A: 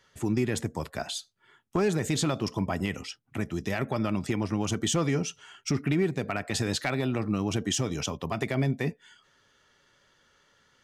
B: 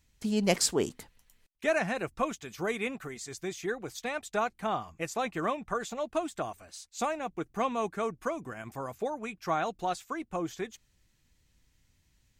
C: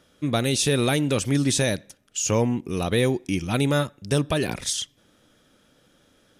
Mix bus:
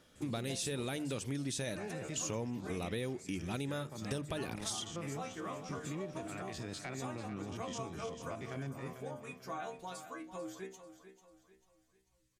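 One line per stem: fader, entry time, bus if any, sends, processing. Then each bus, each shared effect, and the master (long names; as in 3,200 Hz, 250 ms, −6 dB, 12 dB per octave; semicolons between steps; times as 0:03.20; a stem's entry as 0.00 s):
−12.5 dB, 0.00 s, no send, echo send −10 dB, spectrum averaged block by block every 50 ms; low-pass filter 8,200 Hz
−2.0 dB, 0.00 s, no send, echo send −12.5 dB, parametric band 9,800 Hz +8 dB 0.95 octaves; stiff-string resonator 62 Hz, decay 0.4 s, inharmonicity 0.002
−5.0 dB, 0.00 s, no send, no echo send, mains-hum notches 50/100/150 Hz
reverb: not used
echo: repeating echo 443 ms, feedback 38%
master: downward compressor 4 to 1, threshold −37 dBFS, peak gain reduction 13 dB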